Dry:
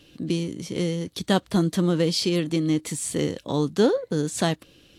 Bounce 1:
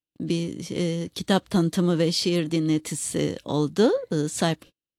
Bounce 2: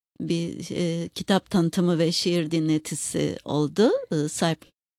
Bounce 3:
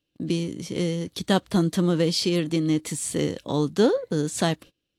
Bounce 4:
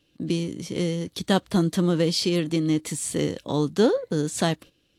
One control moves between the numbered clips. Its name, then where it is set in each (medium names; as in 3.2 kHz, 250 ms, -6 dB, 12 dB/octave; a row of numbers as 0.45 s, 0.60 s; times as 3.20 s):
gate, range: -44 dB, -60 dB, -26 dB, -13 dB